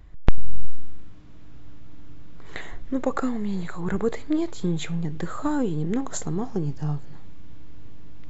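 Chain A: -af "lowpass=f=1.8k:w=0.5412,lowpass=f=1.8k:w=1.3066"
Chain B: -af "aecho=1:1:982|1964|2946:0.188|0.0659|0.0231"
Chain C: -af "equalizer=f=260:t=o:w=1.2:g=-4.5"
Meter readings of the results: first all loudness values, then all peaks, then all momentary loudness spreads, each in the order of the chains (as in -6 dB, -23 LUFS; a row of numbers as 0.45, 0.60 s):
-28.5, -28.5, -31.0 LUFS; -2.0, -2.5, -3.5 dBFS; 16, 17, 13 LU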